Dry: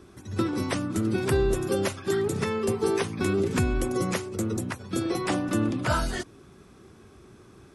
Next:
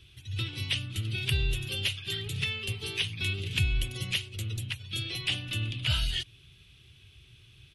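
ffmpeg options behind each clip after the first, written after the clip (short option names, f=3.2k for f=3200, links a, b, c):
-af "firequalizer=gain_entry='entry(130,0);entry(200,-20);entry(1100,-20);entry(2900,14);entry(5200,-4);entry(7500,-8);entry(11000,-2)':delay=0.05:min_phase=1"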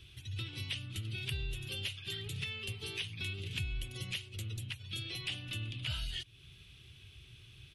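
-af "acompressor=threshold=-43dB:ratio=2"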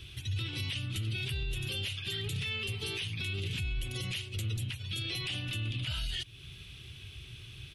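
-af "alimiter=level_in=11dB:limit=-24dB:level=0:latency=1:release=26,volume=-11dB,volume=8dB"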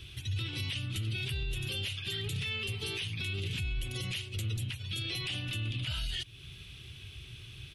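-af anull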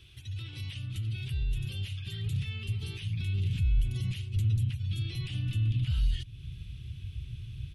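-af "asubboost=boost=10:cutoff=180,volume=-8dB"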